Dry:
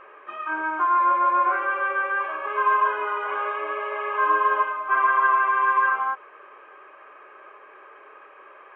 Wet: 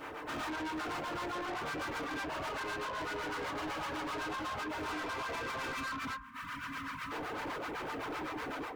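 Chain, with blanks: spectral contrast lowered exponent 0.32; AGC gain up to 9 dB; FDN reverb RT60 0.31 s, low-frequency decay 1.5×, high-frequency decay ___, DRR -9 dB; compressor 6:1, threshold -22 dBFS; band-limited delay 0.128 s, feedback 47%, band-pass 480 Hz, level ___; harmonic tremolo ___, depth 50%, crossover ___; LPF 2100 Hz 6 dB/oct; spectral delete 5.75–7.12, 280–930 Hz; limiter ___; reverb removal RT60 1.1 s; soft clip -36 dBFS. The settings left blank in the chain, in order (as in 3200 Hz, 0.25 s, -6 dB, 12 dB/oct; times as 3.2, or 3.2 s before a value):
0.5×, -5 dB, 7.9 Hz, 700 Hz, -18.5 dBFS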